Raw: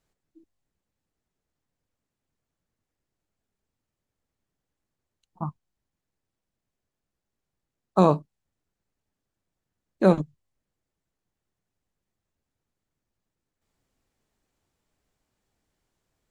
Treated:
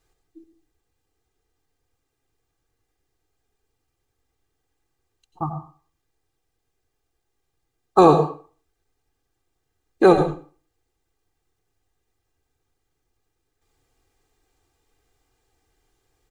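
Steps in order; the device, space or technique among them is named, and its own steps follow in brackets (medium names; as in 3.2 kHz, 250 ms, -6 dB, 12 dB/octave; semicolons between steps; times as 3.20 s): microphone above a desk (comb 2.5 ms, depth 82%; reverberation RT60 0.40 s, pre-delay 84 ms, DRR 7.5 dB); trim +5 dB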